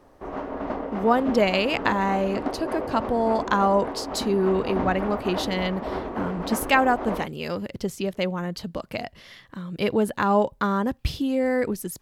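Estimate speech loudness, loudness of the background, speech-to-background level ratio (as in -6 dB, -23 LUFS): -25.0 LUFS, -32.0 LUFS, 7.0 dB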